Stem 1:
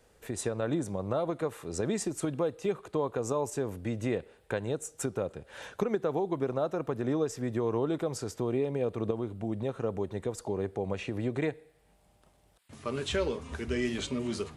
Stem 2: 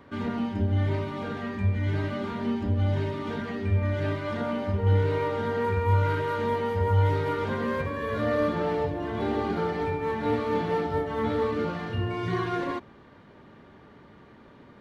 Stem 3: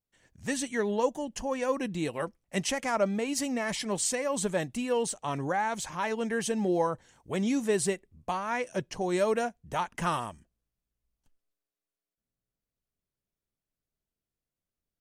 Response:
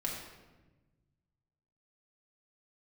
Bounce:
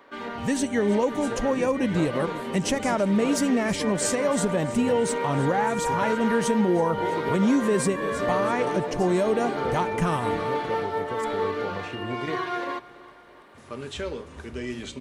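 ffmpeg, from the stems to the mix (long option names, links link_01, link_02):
-filter_complex "[0:a]adelay=850,volume=-3.5dB,asplit=2[link_01][link_02];[link_02]volume=-14.5dB[link_03];[1:a]highpass=450,volume=2.5dB,asplit=2[link_04][link_05];[link_05]volume=-19.5dB[link_06];[2:a]lowshelf=frequency=490:gain=9.5,volume=2dB,asplit=3[link_07][link_08][link_09];[link_08]volume=-16.5dB[link_10];[link_09]apad=whole_len=679897[link_11];[link_01][link_11]sidechaincompress=threshold=-24dB:ratio=8:attack=16:release=390[link_12];[3:a]atrim=start_sample=2205[link_13];[link_03][link_13]afir=irnorm=-1:irlink=0[link_14];[link_06][link_10]amix=inputs=2:normalize=0,aecho=0:1:330|660|990|1320|1650|1980|2310|2640:1|0.55|0.303|0.166|0.0915|0.0503|0.0277|0.0152[link_15];[link_12][link_04][link_07][link_14][link_15]amix=inputs=5:normalize=0,alimiter=limit=-13.5dB:level=0:latency=1:release=108"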